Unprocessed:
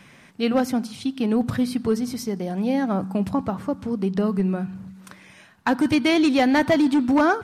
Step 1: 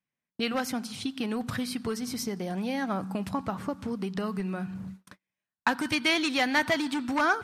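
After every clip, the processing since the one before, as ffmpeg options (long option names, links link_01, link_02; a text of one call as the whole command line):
ffmpeg -i in.wav -filter_complex "[0:a]agate=range=-42dB:threshold=-41dB:ratio=16:detection=peak,acrossover=split=990[link_01][link_02];[link_01]acompressor=threshold=-30dB:ratio=6[link_03];[link_03][link_02]amix=inputs=2:normalize=0" out.wav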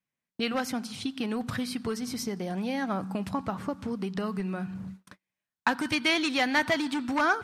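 ffmpeg -i in.wav -af "highshelf=frequency=11000:gain=-5" out.wav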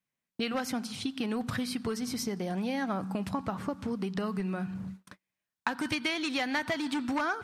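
ffmpeg -i in.wav -af "acompressor=threshold=-27dB:ratio=6" out.wav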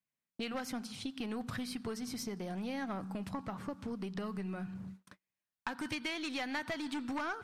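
ffmpeg -i in.wav -af "aeval=exprs='(tanh(11.2*val(0)+0.3)-tanh(0.3))/11.2':channel_layout=same,volume=-5.5dB" out.wav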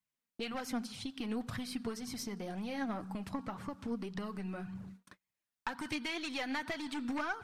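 ffmpeg -i in.wav -af "flanger=delay=0.9:depth=3.4:regen=42:speed=1.9:shape=sinusoidal,volume=4dB" out.wav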